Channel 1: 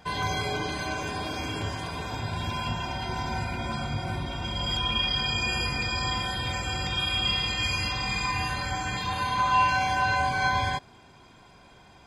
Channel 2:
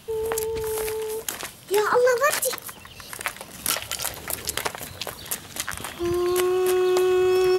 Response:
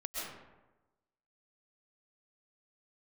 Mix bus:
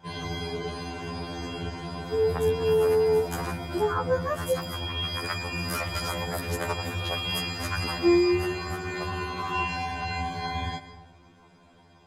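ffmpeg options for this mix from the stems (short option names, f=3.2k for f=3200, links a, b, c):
-filter_complex "[0:a]volume=-6dB,asplit=2[a][b];[b]volume=-10.5dB[c];[1:a]highshelf=f=1.9k:t=q:w=1.5:g=-9.5,acompressor=threshold=-28dB:ratio=6,adelay=2050,volume=1.5dB,asplit=2[d][e];[e]volume=-23.5dB[f];[2:a]atrim=start_sample=2205[g];[c][f]amix=inputs=2:normalize=0[h];[h][g]afir=irnorm=-1:irlink=0[i];[a][d][i]amix=inputs=3:normalize=0,equalizer=f=220:w=0.34:g=6.5,afftfilt=real='re*2*eq(mod(b,4),0)':imag='im*2*eq(mod(b,4),0)':win_size=2048:overlap=0.75"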